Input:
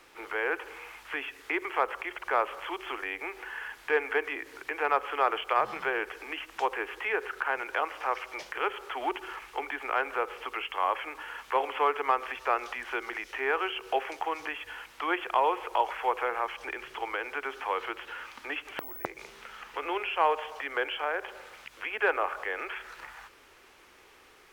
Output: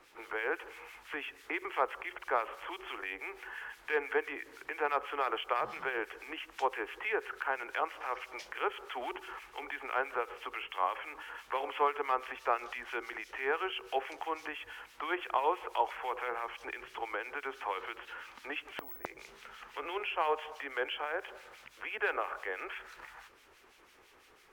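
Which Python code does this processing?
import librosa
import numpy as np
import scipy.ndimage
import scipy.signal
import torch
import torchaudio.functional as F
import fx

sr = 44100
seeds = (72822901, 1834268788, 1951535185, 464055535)

y = fx.harmonic_tremolo(x, sr, hz=6.0, depth_pct=70, crossover_hz=1700.0)
y = F.gain(torch.from_numpy(y), -1.5).numpy()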